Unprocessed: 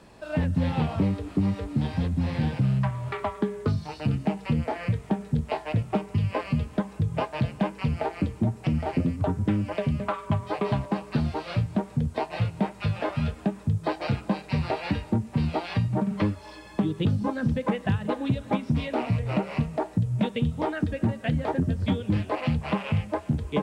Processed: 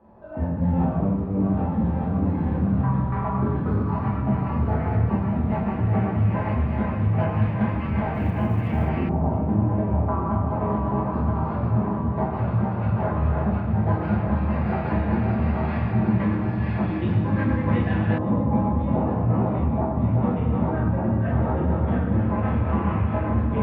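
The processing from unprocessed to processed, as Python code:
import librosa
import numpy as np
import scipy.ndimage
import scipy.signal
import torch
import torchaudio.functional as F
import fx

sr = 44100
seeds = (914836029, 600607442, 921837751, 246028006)

y = fx.reverse_delay_fb(x, sr, ms=600, feedback_pct=64, wet_db=-3)
y = fx.rev_fdn(y, sr, rt60_s=1.3, lf_ratio=1.5, hf_ratio=0.85, size_ms=82.0, drr_db=-7.0)
y = fx.filter_lfo_lowpass(y, sr, shape='saw_up', hz=0.11, low_hz=900.0, high_hz=2100.0, q=1.5)
y = fx.quant_float(y, sr, bits=6, at=(8.13, 8.88), fade=0.02)
y = y * 10.0 ** (-8.5 / 20.0)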